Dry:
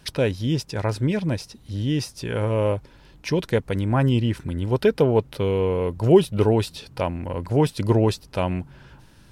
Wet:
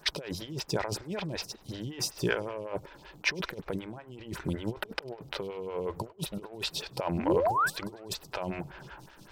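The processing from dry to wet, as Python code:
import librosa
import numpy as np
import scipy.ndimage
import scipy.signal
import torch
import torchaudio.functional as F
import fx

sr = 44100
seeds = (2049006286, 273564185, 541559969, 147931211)

p1 = fx.over_compress(x, sr, threshold_db=-27.0, ratio=-0.5)
p2 = fx.graphic_eq_31(p1, sr, hz=(100, 250, 500, 10000), db=(-8, -12, -4, -8))
p3 = fx.spec_paint(p2, sr, seeds[0], shape='rise', start_s=7.18, length_s=0.52, low_hz=200.0, high_hz=1800.0, level_db=-26.0)
p4 = p3 + fx.echo_feedback(p3, sr, ms=100, feedback_pct=55, wet_db=-24.0, dry=0)
p5 = fx.leveller(p4, sr, passes=1)
p6 = fx.low_shelf(p5, sr, hz=100.0, db=-9.5)
p7 = fx.stagger_phaser(p6, sr, hz=5.3)
y = p7 * 10.0 ** (-2.0 / 20.0)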